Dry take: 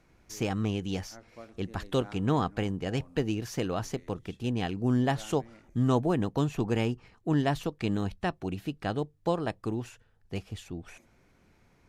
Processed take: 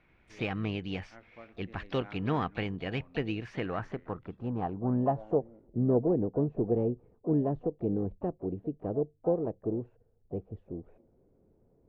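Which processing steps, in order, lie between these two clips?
low-pass sweep 2400 Hz -> 470 Hz, 3.38–5.56; harmoniser +7 st -17 dB; gain -4 dB

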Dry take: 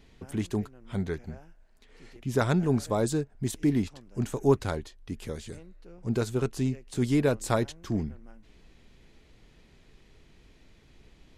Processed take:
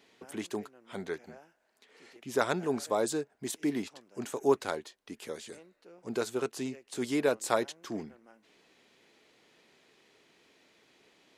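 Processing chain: HPF 370 Hz 12 dB/oct

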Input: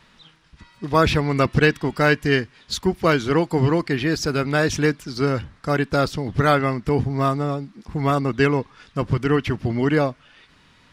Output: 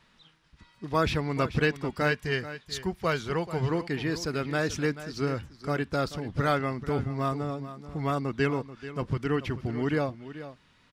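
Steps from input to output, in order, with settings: 2.11–3.7 bell 290 Hz -10 dB 0.45 oct; on a send: echo 0.435 s -13.5 dB; on the sum: gain -8.5 dB

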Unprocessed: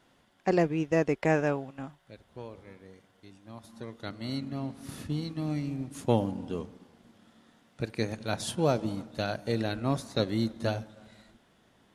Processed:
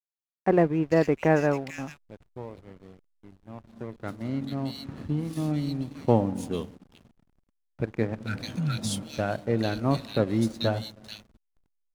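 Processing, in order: spectral repair 8.28–8.99, 220–1300 Hz after; bands offset in time lows, highs 0.44 s, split 2500 Hz; backlash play -46 dBFS; gain +4 dB

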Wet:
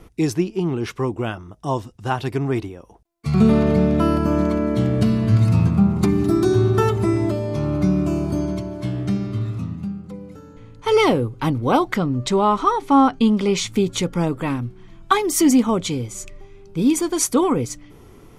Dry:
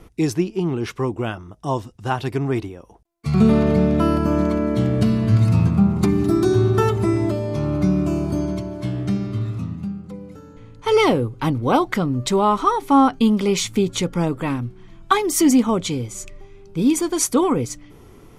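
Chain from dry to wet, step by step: 11.95–13.72 Bessel low-pass 7700 Hz, order 2

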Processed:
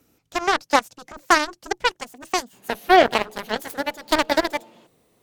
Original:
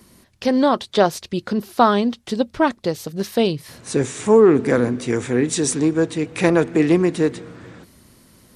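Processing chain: speed glide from 129% -> 198%; added harmonics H 3 -36 dB, 7 -15 dB, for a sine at -1 dBFS; gain -1 dB

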